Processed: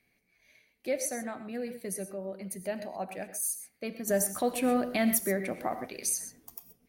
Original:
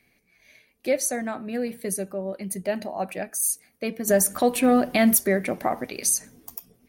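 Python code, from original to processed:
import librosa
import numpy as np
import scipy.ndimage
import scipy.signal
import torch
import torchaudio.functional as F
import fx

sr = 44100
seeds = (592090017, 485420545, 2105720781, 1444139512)

y = fx.rev_gated(x, sr, seeds[0], gate_ms=150, shape='rising', drr_db=10.0)
y = y * 10.0 ** (-8.0 / 20.0)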